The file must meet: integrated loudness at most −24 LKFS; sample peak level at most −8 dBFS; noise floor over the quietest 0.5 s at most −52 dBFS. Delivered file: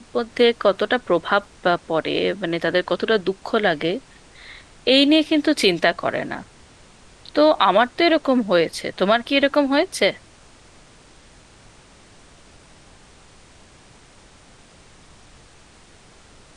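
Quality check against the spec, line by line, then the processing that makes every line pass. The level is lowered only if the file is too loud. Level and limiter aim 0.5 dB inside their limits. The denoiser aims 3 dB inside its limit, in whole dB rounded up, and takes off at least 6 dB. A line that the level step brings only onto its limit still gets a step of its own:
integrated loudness −19.5 LKFS: out of spec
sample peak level −2.5 dBFS: out of spec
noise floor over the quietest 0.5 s −49 dBFS: out of spec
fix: level −5 dB
brickwall limiter −8.5 dBFS

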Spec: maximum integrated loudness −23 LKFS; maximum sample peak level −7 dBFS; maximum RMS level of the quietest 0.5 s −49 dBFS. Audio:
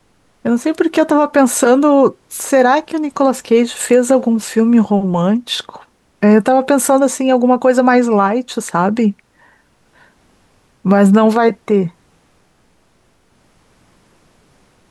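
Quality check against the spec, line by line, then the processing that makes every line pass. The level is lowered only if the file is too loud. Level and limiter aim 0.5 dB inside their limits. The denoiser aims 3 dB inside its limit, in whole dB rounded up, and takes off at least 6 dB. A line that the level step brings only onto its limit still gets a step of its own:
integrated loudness −13.5 LKFS: out of spec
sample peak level −2.0 dBFS: out of spec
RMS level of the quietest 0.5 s −56 dBFS: in spec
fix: level −10 dB

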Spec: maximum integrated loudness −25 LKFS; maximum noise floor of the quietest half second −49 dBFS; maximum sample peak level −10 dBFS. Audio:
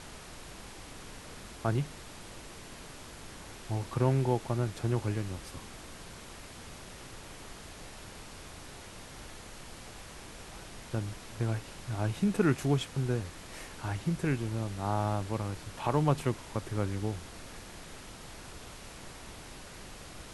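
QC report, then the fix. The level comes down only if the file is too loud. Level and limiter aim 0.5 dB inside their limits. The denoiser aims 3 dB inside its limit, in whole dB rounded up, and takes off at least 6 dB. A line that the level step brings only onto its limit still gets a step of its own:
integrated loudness −33.0 LKFS: in spec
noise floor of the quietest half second −47 dBFS: out of spec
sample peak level −12.5 dBFS: in spec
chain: broadband denoise 6 dB, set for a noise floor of −47 dBFS

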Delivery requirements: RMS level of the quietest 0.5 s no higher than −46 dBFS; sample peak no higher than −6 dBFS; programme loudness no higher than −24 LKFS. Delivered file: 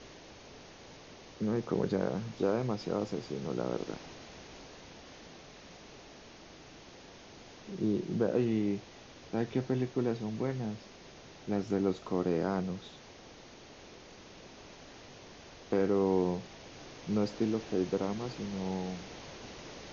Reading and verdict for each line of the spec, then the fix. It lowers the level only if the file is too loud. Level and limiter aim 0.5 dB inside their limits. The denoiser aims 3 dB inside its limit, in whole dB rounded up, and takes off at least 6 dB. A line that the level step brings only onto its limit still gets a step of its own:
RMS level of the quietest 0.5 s −52 dBFS: in spec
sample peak −16.5 dBFS: in spec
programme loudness −33.5 LKFS: in spec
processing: no processing needed

